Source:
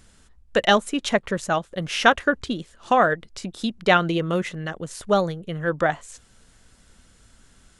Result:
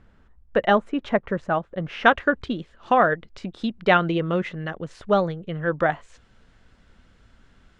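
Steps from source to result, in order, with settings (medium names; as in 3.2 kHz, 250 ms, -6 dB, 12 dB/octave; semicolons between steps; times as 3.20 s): low-pass 1.7 kHz 12 dB/octave, from 2.05 s 3 kHz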